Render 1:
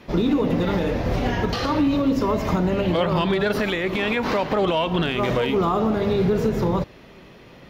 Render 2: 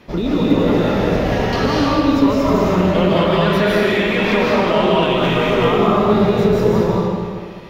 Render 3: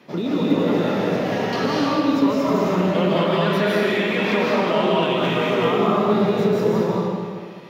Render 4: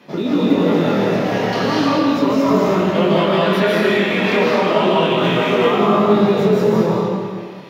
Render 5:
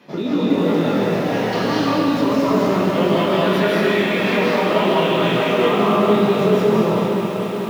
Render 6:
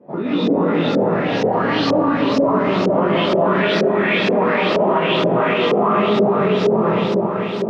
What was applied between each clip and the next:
convolution reverb RT60 1.9 s, pre-delay 115 ms, DRR −5.5 dB
high-pass filter 140 Hz 24 dB per octave; level −4 dB
chorus effect 0.33 Hz, delay 19.5 ms, depth 7.2 ms; level +7 dB
feedback echo at a low word length 441 ms, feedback 80%, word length 6 bits, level −9.5 dB; level −2.5 dB
auto-filter low-pass saw up 2.1 Hz 470–5,900 Hz; brickwall limiter −7.5 dBFS, peak gain reduction 6.5 dB

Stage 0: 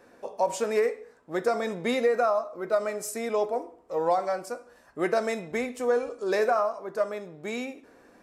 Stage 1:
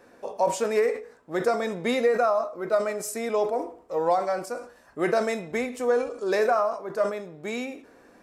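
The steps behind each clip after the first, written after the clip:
level that may fall only so fast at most 120 dB per second
level +1.5 dB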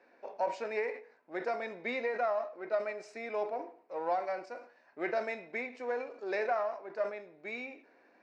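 gain on one half-wave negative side −3 dB
loudspeaker in its box 370–4,400 Hz, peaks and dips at 470 Hz −5 dB, 1,200 Hz −7 dB, 2,300 Hz +5 dB, 3,300 Hz −10 dB
level −5.5 dB

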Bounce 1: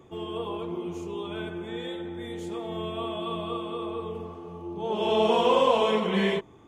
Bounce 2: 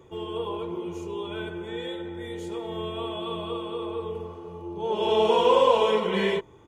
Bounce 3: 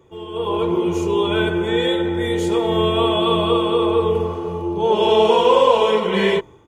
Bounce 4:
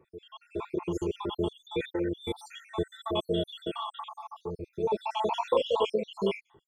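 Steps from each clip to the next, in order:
comb filter 2.1 ms, depth 43%
automatic gain control gain up to 16 dB; level −1 dB
time-frequency cells dropped at random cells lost 72%; level −8.5 dB

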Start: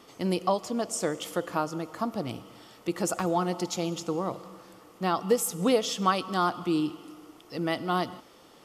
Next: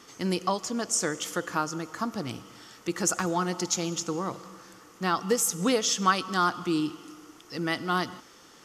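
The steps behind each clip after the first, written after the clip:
graphic EQ with 15 bands 630 Hz −6 dB, 1,600 Hz +7 dB, 6,300 Hz +10 dB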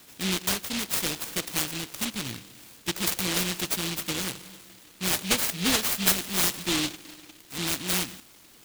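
short delay modulated by noise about 3,100 Hz, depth 0.5 ms

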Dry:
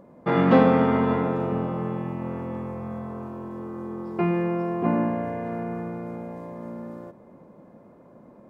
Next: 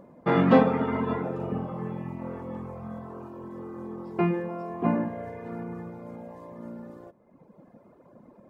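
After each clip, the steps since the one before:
reverb reduction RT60 1.5 s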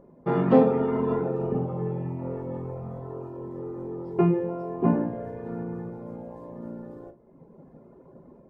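automatic gain control gain up to 5 dB
tilt shelving filter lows +6.5 dB, about 890 Hz
convolution reverb RT60 0.25 s, pre-delay 3 ms, DRR 6 dB
level −6.5 dB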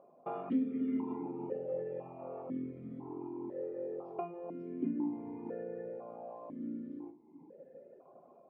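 downward compressor 8 to 1, threshold −29 dBFS, peak gain reduction 16.5 dB
formant filter that steps through the vowels 2 Hz
level +6.5 dB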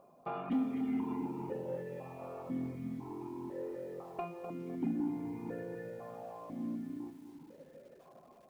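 parametric band 480 Hz −14 dB 2.8 octaves
soft clipping −38 dBFS, distortion −17 dB
feedback echo at a low word length 253 ms, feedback 35%, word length 12 bits, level −9 dB
level +12 dB

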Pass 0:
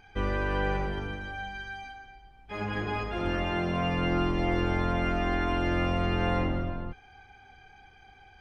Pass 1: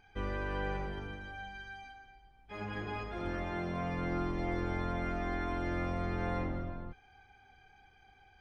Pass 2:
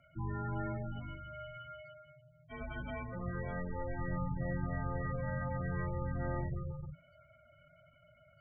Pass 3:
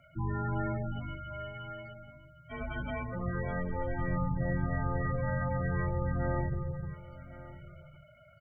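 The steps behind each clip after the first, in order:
notch filter 2,800 Hz, Q 22; level −7.5 dB
gate on every frequency bin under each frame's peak −15 dB strong; frequency shifter −170 Hz; level −1.5 dB
single-tap delay 1,110 ms −16.5 dB; level +5 dB

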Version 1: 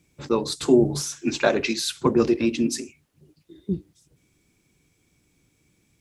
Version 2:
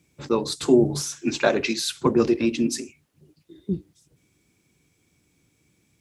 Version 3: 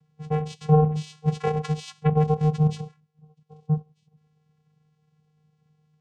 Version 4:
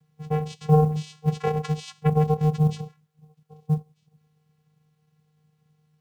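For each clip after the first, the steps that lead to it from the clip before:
high-pass filter 58 Hz
channel vocoder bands 4, square 153 Hz
log-companded quantiser 8 bits

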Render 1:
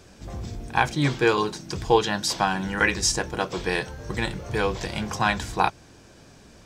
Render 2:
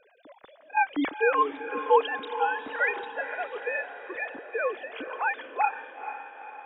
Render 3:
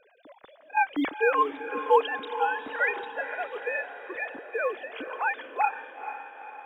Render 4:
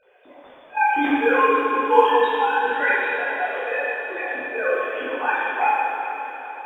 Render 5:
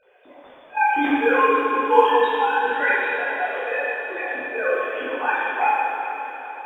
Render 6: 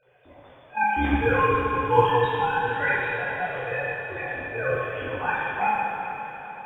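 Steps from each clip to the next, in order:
three sine waves on the formant tracks; feedback delay with all-pass diffusion 470 ms, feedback 55%, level −10.5 dB; level −4 dB
floating-point word with a short mantissa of 6 bits
convolution reverb RT60 2.3 s, pre-delay 11 ms, DRR −9.5 dB; level −2.5 dB
no processing that can be heard
sub-octave generator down 2 octaves, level +1 dB; level −4 dB

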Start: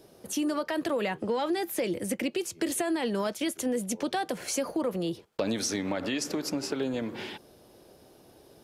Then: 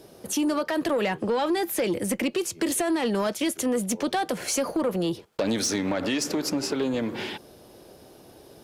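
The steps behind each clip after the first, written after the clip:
harmonic generator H 5 −19 dB, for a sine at −16.5 dBFS
level +2 dB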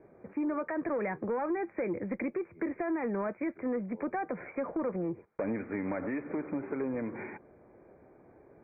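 Chebyshev low-pass filter 2,400 Hz, order 10
level −7 dB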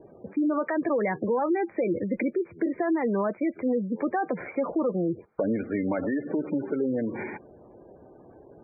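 gate on every frequency bin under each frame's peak −20 dB strong
level +7 dB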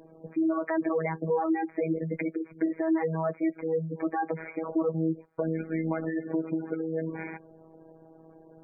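phases set to zero 161 Hz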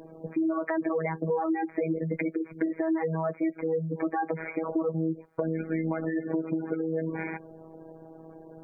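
downward compressor 2.5 to 1, threshold −33 dBFS, peak gain reduction 8 dB
level +5.5 dB

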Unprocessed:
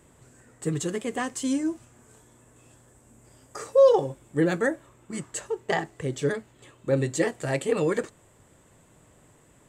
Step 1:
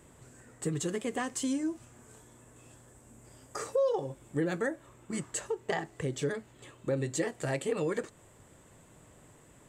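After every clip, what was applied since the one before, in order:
downward compressor 2.5 to 1, threshold −31 dBFS, peak gain reduction 12.5 dB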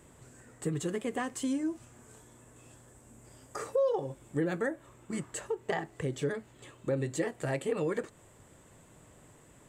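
dynamic equaliser 5,800 Hz, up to −6 dB, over −53 dBFS, Q 0.83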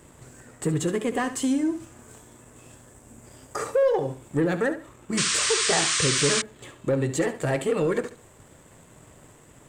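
leveller curve on the samples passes 1
flutter between parallel walls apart 12 metres, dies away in 0.35 s
sound drawn into the spectrogram noise, 0:05.17–0:06.42, 1,000–9,200 Hz −29 dBFS
level +4.5 dB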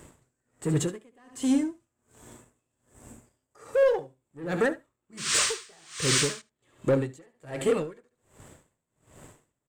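in parallel at −4 dB: hard clipping −20.5 dBFS, distortion −14 dB
on the sum: single-tap delay 78 ms −16.5 dB
tremolo with a sine in dB 1.3 Hz, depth 35 dB
level −2.5 dB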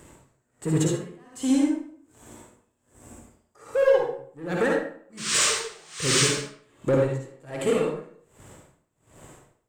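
convolution reverb RT60 0.55 s, pre-delay 50 ms, DRR −1 dB

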